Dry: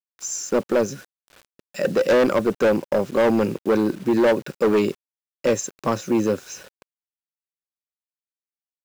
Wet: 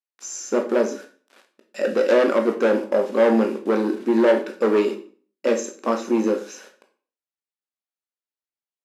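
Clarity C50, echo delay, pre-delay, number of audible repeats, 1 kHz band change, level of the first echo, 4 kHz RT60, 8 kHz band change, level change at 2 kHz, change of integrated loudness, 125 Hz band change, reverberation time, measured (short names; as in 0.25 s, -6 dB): 10.0 dB, none, 14 ms, none, 0.0 dB, none, 0.40 s, -4.0 dB, -0.5 dB, +0.5 dB, n/a, 0.45 s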